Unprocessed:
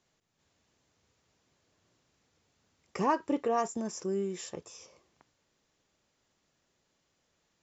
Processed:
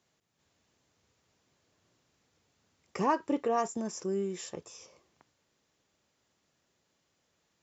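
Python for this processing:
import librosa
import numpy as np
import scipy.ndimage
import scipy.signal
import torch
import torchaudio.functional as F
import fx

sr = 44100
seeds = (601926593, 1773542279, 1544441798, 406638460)

y = scipy.signal.sosfilt(scipy.signal.butter(2, 54.0, 'highpass', fs=sr, output='sos'), x)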